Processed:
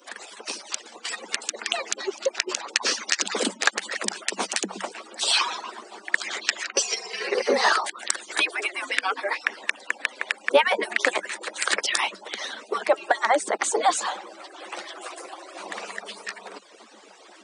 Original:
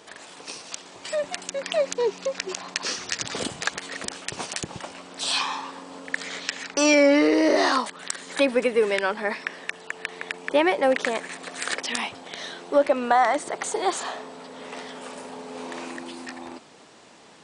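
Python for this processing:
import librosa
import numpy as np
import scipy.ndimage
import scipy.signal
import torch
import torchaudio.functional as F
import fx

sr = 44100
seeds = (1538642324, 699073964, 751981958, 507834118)

y = fx.hpss_only(x, sr, part='percussive')
y = scipy.signal.sosfilt(scipy.signal.cheby1(10, 1.0, 190.0, 'highpass', fs=sr, output='sos'), y)
y = F.gain(torch.from_numpy(y), 6.0).numpy()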